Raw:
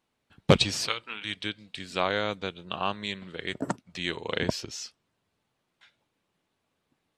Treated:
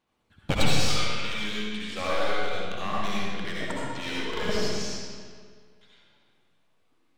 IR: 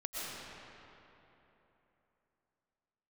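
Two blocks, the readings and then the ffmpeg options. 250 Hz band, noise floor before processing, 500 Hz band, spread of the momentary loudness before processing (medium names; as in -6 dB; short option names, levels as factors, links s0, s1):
0.0 dB, -79 dBFS, -1.0 dB, 13 LU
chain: -filter_complex "[0:a]aphaser=in_gain=1:out_gain=1:delay=4.9:decay=0.48:speed=0.33:type=sinusoidal,aeval=exprs='clip(val(0),-1,0.0422)':c=same[s0];[1:a]atrim=start_sample=2205,asetrate=79380,aresample=44100[s1];[s0][s1]afir=irnorm=-1:irlink=0,volume=1.68"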